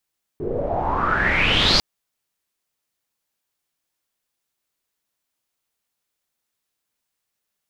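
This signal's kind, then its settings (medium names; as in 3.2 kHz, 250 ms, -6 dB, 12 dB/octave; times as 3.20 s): swept filtered noise pink, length 1.40 s lowpass, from 380 Hz, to 4.8 kHz, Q 7.6, exponential, gain ramp +8.5 dB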